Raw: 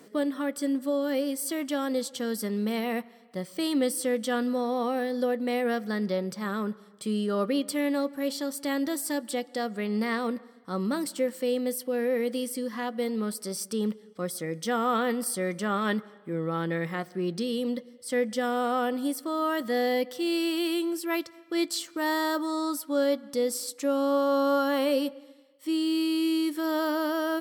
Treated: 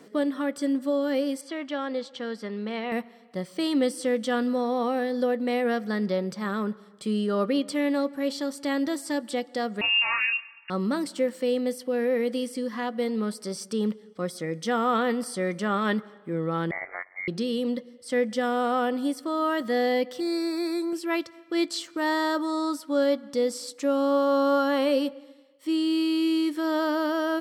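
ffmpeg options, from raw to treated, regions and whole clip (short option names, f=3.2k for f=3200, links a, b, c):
-filter_complex "[0:a]asettb=1/sr,asplit=3[a][b][c];[a]atrim=end=1.414[d];[b]atrim=start=1.41:end=2.92,asetpts=PTS-STARTPTS,afade=t=in:d=0.004:c=qsin,afade=t=out:st=1.506:d=0.004:c=qsin,lowpass=3.5k,lowshelf=f=360:g=-9[e];[c]atrim=start=2.916[f];[d][e]acrossfade=d=0.004:c1=hsin:c2=qsin[g];[g][f]acrossfade=d=0.004:c1=qsin:c2=hsin,asettb=1/sr,asplit=3[h][i][j];[h]atrim=end=9.814[k];[i]atrim=start=9.81:end=10.7,asetpts=PTS-STARTPTS,afade=t=in:d=0.004:c=qsin,afade=t=out:st=0.886:d=0.004:c=qsin,asplit=2[l][m];[m]adelay=24,volume=-3dB[n];[l][n]amix=inputs=2:normalize=0,atrim=end_sample=39249,lowpass=f=2.6k:t=q:w=0.5098,lowpass=f=2.6k:t=q:w=0.6013,lowpass=f=2.6k:t=q:w=0.9,lowpass=f=2.6k:t=q:w=2.563,afreqshift=-3000[o];[j]atrim=start=10.696[p];[k][o]acrossfade=d=0.004:c1=hsin:c2=qsin[q];[q][p]acrossfade=d=0.004:c1=qsin:c2=hsin,asettb=1/sr,asplit=3[r][s][t];[r]atrim=end=16.714[u];[s]atrim=start=16.71:end=17.28,asetpts=PTS-STARTPTS,afade=t=in:d=0.004:c=qsin,afade=t=out:st=0.566:d=0.004:c=qsin,highpass=f=340:w=0.5412,highpass=f=340:w=1.3066,tremolo=f=93:d=0.947,lowpass=f=2.1k:t=q:w=0.5098,lowpass=f=2.1k:t=q:w=0.6013,lowpass=f=2.1k:t=q:w=0.9,lowpass=f=2.1k:t=q:w=2.563,afreqshift=-2500[v];[t]atrim=start=17.276[w];[u][v]acrossfade=d=0.004:c1=hsin:c2=qsin[x];[x][w]acrossfade=d=0.004:c1=qsin:c2=hsin,asettb=1/sr,asplit=3[y][z][aa];[y]atrim=end=20.204[ab];[z]atrim=start=20.2:end=20.93,asetpts=PTS-STARTPTS,afade=t=in:d=0.004:c=qsin,afade=t=out:st=0.726:d=0.004:c=qsin,asuperstop=centerf=3000:order=8:qfactor=2.4,bass=f=250:g=-8,treble=f=4k:g=0[ac];[aa]atrim=start=20.926[ad];[ab][ac]acrossfade=d=0.004:c1=hsin:c2=qsin[ae];[ae][ad]acrossfade=d=0.004:c1=qsin:c2=hsin,acrossover=split=9200[af][ag];[ag]acompressor=threshold=-48dB:ratio=4:attack=1:release=60[ah];[af][ah]amix=inputs=2:normalize=0,highshelf=f=10k:g=-11.5,volume=2dB"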